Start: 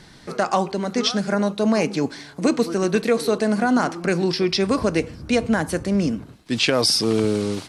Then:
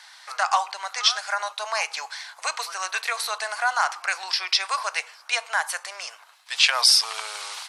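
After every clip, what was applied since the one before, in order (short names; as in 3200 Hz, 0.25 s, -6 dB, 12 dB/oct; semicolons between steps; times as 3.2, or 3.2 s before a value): steep high-pass 810 Hz 36 dB/oct; gain +3 dB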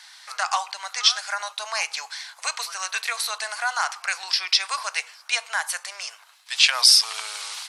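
tilt shelf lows -4.5 dB, about 1500 Hz; gain -1.5 dB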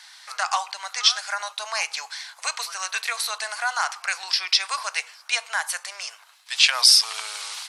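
nothing audible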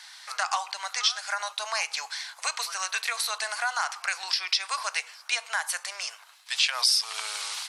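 compressor 2:1, threshold -26 dBFS, peak gain reduction 9 dB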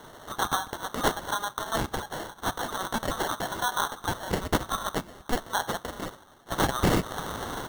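sample-and-hold 18×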